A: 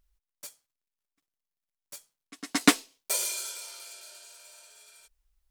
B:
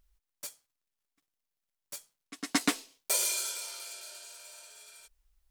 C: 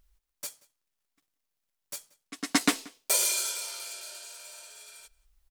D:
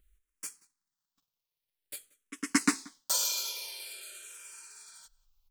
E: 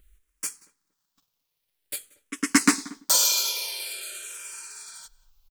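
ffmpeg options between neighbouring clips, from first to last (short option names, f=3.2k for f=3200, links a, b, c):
-af "alimiter=limit=-15.5dB:level=0:latency=1:release=221,volume=2dB"
-filter_complex "[0:a]asplit=2[a][b];[b]adelay=180.8,volume=-23dB,highshelf=f=4k:g=-4.07[c];[a][c]amix=inputs=2:normalize=0,volume=3.5dB"
-filter_complex "[0:a]equalizer=f=660:w=3.3:g=-10.5,asplit=2[a][b];[b]afreqshift=-0.49[c];[a][c]amix=inputs=2:normalize=1"
-filter_complex "[0:a]asplit=2[a][b];[b]aeval=exprs='0.0668*(abs(mod(val(0)/0.0668+3,4)-2)-1)':c=same,volume=-8dB[c];[a][c]amix=inputs=2:normalize=0,asplit=2[d][e];[e]adelay=232,lowpass=f=840:p=1,volume=-20dB,asplit=2[f][g];[g]adelay=232,lowpass=f=840:p=1,volume=0.25[h];[d][f][h]amix=inputs=3:normalize=0,volume=6.5dB"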